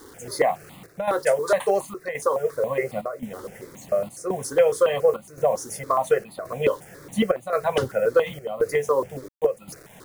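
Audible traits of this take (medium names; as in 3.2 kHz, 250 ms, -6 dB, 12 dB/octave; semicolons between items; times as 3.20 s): a quantiser's noise floor 8-bit, dither none; chopped level 0.93 Hz, depth 65%, duty 80%; notches that jump at a steady rate 7.2 Hz 670–1600 Hz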